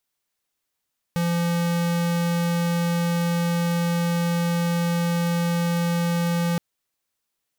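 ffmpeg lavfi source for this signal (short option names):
-f lavfi -i "aevalsrc='0.075*(2*lt(mod(171*t,1),0.5)-1)':d=5.42:s=44100"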